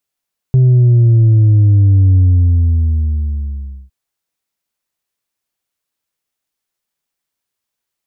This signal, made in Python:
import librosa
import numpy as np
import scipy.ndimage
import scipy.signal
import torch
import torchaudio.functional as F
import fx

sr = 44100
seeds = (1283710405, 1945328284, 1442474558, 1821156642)

y = fx.sub_drop(sr, level_db=-6.0, start_hz=130.0, length_s=3.36, drive_db=2.5, fade_s=1.73, end_hz=65.0)